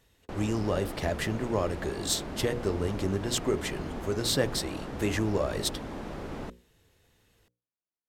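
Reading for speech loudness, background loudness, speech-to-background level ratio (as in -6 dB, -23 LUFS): -31.0 LUFS, -39.0 LUFS, 8.0 dB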